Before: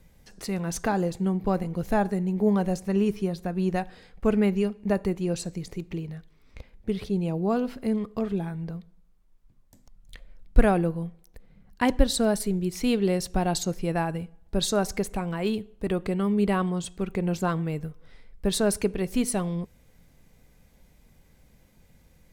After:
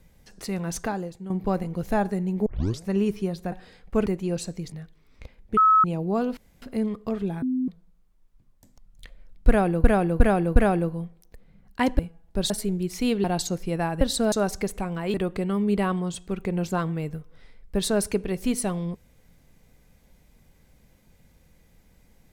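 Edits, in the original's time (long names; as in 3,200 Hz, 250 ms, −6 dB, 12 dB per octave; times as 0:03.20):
0:00.78–0:01.30: fade out quadratic, to −11.5 dB
0:02.46: tape start 0.39 s
0:03.52–0:03.82: remove
0:04.36–0:05.04: remove
0:05.70–0:06.07: remove
0:06.92–0:07.19: beep over 1,290 Hz −13.5 dBFS
0:07.72: splice in room tone 0.25 s
0:08.52–0:08.78: beep over 256 Hz −22 dBFS
0:10.58–0:10.94: repeat, 4 plays
0:12.01–0:12.32: swap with 0:14.17–0:14.68
0:13.06–0:13.40: remove
0:15.50–0:15.84: remove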